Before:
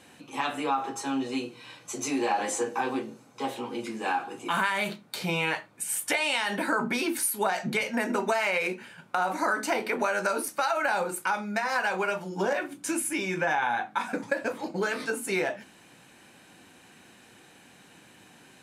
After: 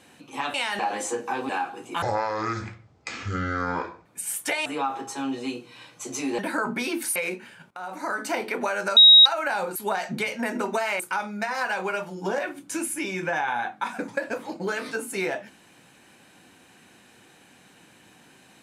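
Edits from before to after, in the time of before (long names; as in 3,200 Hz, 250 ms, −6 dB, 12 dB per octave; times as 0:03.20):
0:00.54–0:02.27: swap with 0:06.28–0:06.53
0:02.97–0:04.03: remove
0:04.56–0:05.68: play speed 55%
0:07.30–0:08.54: move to 0:11.14
0:09.09–0:09.68: fade in, from −15 dB
0:10.35–0:10.64: beep over 3,800 Hz −8 dBFS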